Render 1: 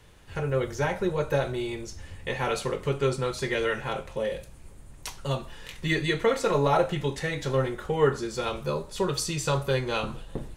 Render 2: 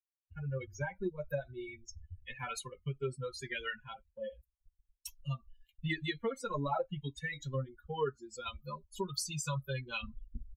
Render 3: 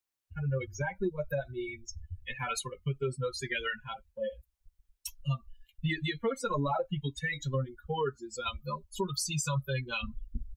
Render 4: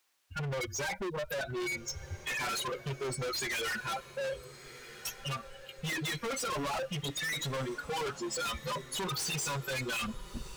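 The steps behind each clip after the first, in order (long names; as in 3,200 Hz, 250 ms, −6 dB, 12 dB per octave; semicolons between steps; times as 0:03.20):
spectral dynamics exaggerated over time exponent 3; downward expander −54 dBFS; downward compressor 2.5 to 1, threshold −38 dBFS, peak gain reduction 13 dB; level +2.5 dB
brickwall limiter −29 dBFS, peak gain reduction 6.5 dB; level +6.5 dB
mid-hump overdrive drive 24 dB, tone 5,600 Hz, clips at −22 dBFS; hard clipping −33.5 dBFS, distortion −9 dB; feedback delay with all-pass diffusion 1,375 ms, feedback 40%, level −15 dB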